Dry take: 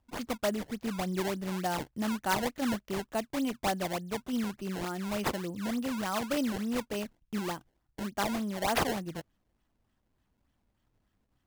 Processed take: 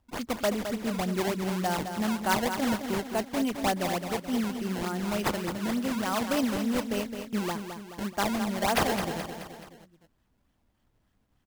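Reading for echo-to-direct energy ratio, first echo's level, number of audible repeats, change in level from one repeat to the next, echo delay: −6.5 dB, −8.0 dB, 4, −5.5 dB, 214 ms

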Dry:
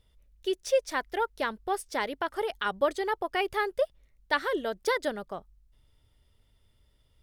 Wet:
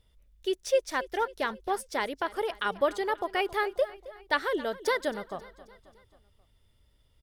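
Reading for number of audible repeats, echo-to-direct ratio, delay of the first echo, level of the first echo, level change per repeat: 4, −16.5 dB, 268 ms, −18.0 dB, −5.5 dB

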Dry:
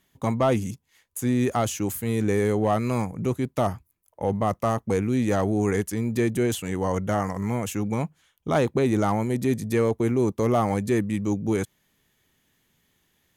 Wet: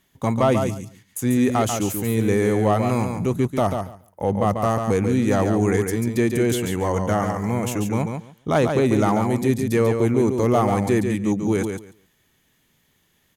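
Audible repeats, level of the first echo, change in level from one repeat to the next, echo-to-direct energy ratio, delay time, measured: 2, −6.0 dB, −16.0 dB, −6.0 dB, 141 ms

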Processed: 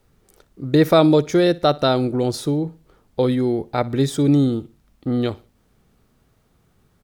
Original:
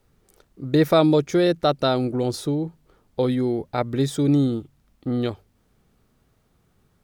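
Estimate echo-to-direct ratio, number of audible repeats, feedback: −21.0 dB, 2, 35%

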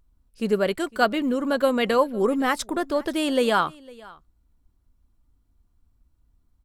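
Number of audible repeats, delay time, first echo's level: 1, 505 ms, −23.0 dB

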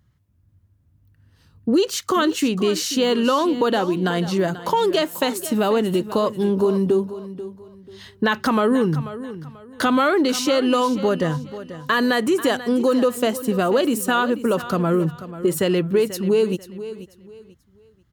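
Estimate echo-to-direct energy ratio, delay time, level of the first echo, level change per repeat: −13.5 dB, 488 ms, −14.0 dB, −11.0 dB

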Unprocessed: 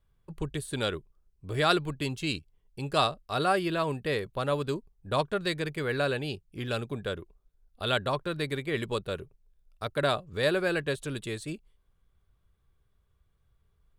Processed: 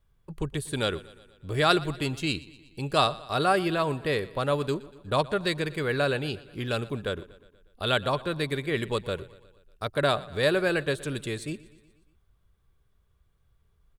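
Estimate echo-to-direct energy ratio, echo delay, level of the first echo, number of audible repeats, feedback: −18.0 dB, 120 ms, −20.0 dB, 4, 59%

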